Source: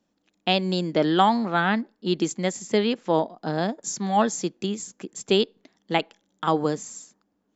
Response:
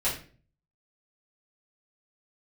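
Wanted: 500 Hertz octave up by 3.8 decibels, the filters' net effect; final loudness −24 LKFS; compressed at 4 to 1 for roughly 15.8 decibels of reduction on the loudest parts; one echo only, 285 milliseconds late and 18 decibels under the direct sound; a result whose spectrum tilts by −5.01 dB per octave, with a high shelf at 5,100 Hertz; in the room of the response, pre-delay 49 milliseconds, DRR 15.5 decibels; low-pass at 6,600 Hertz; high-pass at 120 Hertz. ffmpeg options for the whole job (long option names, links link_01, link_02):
-filter_complex "[0:a]highpass=120,lowpass=6600,equalizer=frequency=500:width_type=o:gain=5,highshelf=frequency=5100:gain=-8,acompressor=threshold=-33dB:ratio=4,aecho=1:1:285:0.126,asplit=2[link_01][link_02];[1:a]atrim=start_sample=2205,adelay=49[link_03];[link_02][link_03]afir=irnorm=-1:irlink=0,volume=-24.5dB[link_04];[link_01][link_04]amix=inputs=2:normalize=0,volume=12dB"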